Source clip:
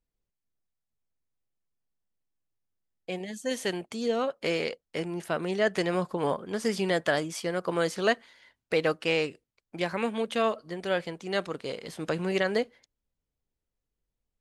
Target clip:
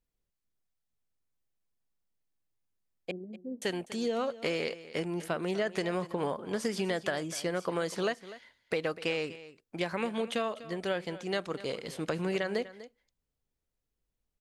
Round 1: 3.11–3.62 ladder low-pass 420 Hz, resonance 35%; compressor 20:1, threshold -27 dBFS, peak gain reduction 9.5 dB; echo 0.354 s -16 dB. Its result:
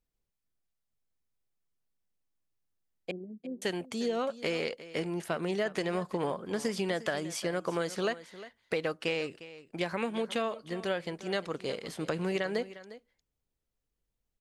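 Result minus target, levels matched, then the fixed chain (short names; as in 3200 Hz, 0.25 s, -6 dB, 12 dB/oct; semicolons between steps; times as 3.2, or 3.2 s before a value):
echo 0.107 s late
3.11–3.62 ladder low-pass 420 Hz, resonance 35%; compressor 20:1, threshold -27 dBFS, peak gain reduction 9.5 dB; echo 0.247 s -16 dB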